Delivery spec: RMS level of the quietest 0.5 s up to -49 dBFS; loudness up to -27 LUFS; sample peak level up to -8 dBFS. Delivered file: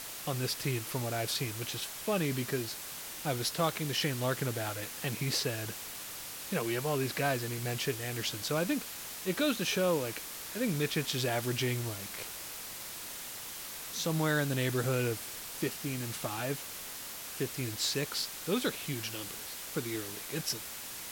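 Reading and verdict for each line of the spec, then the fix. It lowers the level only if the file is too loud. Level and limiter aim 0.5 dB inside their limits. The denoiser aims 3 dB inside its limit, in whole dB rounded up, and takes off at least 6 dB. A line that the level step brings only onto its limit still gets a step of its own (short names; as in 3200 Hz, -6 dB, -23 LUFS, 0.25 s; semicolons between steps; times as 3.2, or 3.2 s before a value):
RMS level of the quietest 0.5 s -43 dBFS: fail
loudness -34.0 LUFS: OK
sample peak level -16.5 dBFS: OK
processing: denoiser 9 dB, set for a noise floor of -43 dBFS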